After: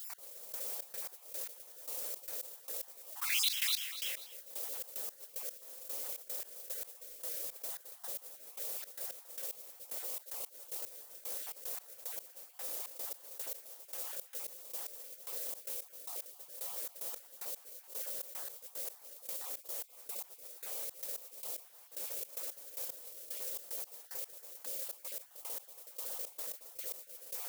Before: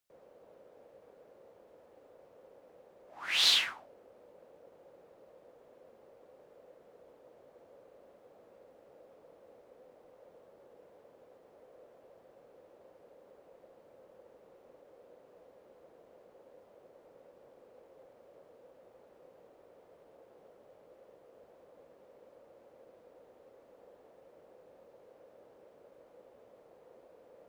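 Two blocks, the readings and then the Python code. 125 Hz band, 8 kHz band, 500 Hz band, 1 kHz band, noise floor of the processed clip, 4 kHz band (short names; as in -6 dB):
n/a, +8.5 dB, 0.0 dB, -1.0 dB, -58 dBFS, -6.5 dB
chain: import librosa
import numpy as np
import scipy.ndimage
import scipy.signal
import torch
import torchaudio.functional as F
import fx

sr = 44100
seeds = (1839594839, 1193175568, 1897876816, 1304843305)

y = fx.spec_dropout(x, sr, seeds[0], share_pct=39)
y = fx.mod_noise(y, sr, seeds[1], snr_db=11)
y = fx.echo_feedback(y, sr, ms=245, feedback_pct=17, wet_db=-9)
y = fx.step_gate(y, sr, bpm=112, pattern='x...xx.x..', floor_db=-24.0, edge_ms=4.5)
y = scipy.signal.lfilter([1.0, -0.97], [1.0], y)
y = fx.env_flatten(y, sr, amount_pct=70)
y = F.gain(torch.from_numpy(y), 1.0).numpy()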